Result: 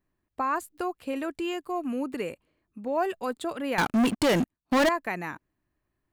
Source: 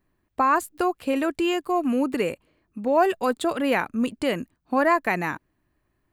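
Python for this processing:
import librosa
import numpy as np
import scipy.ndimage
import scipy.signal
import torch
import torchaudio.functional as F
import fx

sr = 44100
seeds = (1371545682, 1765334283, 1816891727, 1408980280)

y = fx.leveller(x, sr, passes=5, at=(3.78, 4.89))
y = F.gain(torch.from_numpy(y), -7.5).numpy()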